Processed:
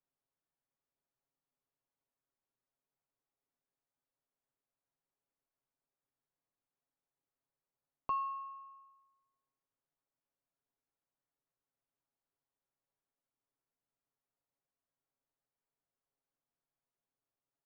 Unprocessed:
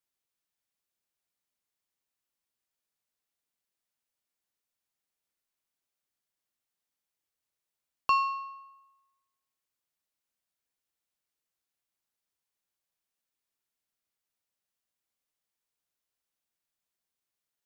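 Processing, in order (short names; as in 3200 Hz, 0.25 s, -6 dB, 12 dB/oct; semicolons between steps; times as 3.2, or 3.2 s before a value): LPF 1100 Hz 12 dB/oct; comb 7.3 ms; compressor 1.5:1, threshold -52 dBFS, peak gain reduction 11 dB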